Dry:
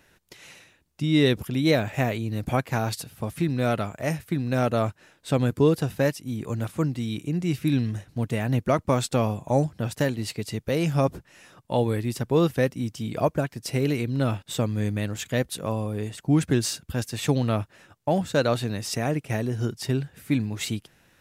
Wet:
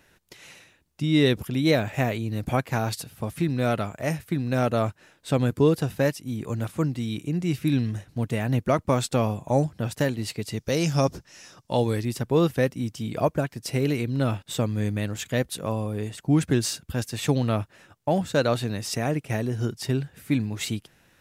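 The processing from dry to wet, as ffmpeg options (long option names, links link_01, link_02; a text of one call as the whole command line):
ffmpeg -i in.wav -filter_complex "[0:a]asettb=1/sr,asplit=3[link_01][link_02][link_03];[link_01]atrim=end=10.574[link_04];[link_02]atrim=start=10.57:end=12.05,asetpts=PTS-STARTPTS,afade=type=in:duration=0.004:curve=qsin,afade=type=out:start_time=1.476:duration=0.004:curve=qsin,equalizer=frequency=5600:width_type=o:width=0.76:gain=12.5[link_05];[link_03]atrim=start=12.046[link_06];[link_04][link_05]acrossfade=duration=0.004:curve1=hsin:curve2=qsin[link_07];[link_07][link_06]acrossfade=duration=0.004:curve1=qsin:curve2=hsin" out.wav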